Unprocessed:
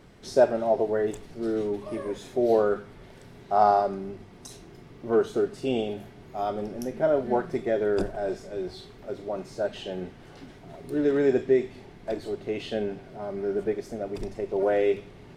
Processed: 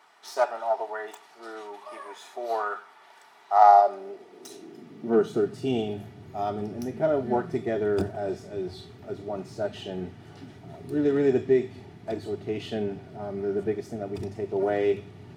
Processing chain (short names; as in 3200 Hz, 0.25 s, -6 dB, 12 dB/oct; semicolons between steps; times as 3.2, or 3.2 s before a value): tracing distortion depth 0.072 ms; notch comb 530 Hz; high-pass sweep 960 Hz -> 90 Hz, 3.53–5.76